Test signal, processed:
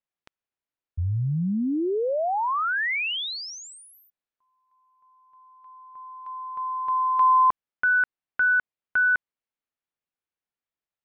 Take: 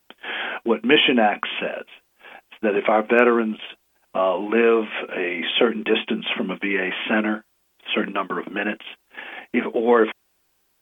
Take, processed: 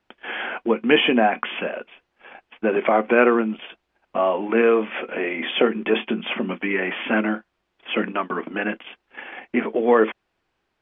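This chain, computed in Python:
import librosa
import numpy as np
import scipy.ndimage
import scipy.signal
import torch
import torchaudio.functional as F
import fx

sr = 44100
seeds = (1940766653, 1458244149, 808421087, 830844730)

y = scipy.signal.sosfilt(scipy.signal.butter(2, 2800.0, 'lowpass', fs=sr, output='sos'), x)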